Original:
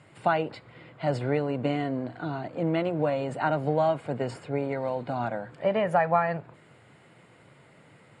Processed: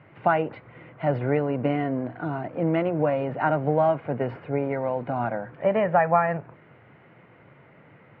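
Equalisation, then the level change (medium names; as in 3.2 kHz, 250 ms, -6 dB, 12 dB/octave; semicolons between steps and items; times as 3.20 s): low-pass 2.5 kHz 24 dB/octave; +3.0 dB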